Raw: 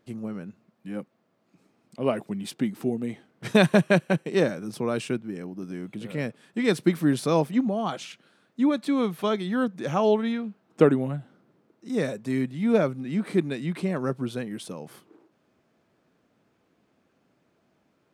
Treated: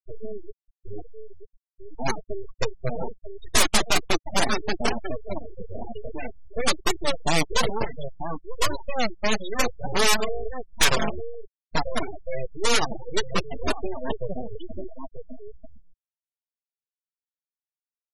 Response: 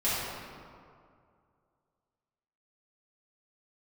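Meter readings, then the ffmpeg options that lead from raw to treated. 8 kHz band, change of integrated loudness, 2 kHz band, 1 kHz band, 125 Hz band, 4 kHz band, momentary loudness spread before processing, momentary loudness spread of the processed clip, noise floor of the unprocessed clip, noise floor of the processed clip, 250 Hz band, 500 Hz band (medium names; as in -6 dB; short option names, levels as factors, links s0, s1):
+15.0 dB, -0.5 dB, +4.5 dB, +4.5 dB, -5.5 dB, +10.5 dB, 16 LU, 18 LU, -70 dBFS, under -85 dBFS, -9.0 dB, -4.0 dB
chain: -filter_complex "[0:a]highpass=48,lowshelf=f=480:g=3.5,aecho=1:1:4.5:0.54,asplit=2[s0][s1];[s1]aecho=0:1:941:0.422[s2];[s0][s2]amix=inputs=2:normalize=0,acrossover=split=5200[s3][s4];[s4]acompressor=threshold=0.002:ratio=4:attack=1:release=60[s5];[s3][s5]amix=inputs=2:normalize=0,aeval=exprs='(mod(4.47*val(0)+1,2)-1)/4.47':c=same,acompressor=threshold=0.00708:ratio=1.5,highshelf=f=2300:g=9.5,aeval=exprs='abs(val(0))':c=same,flanger=delay=2.7:depth=6.4:regen=-33:speed=0.58:shape=sinusoidal,afftfilt=real='re*gte(hypot(re,im),0.0282)':imag='im*gte(hypot(re,im),0.0282)':win_size=1024:overlap=0.75,crystalizer=i=1.5:c=0,volume=2.82"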